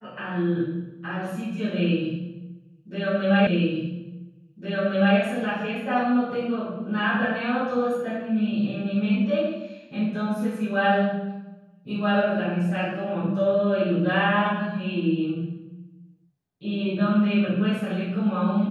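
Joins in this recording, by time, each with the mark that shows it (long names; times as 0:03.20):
0:03.47: the same again, the last 1.71 s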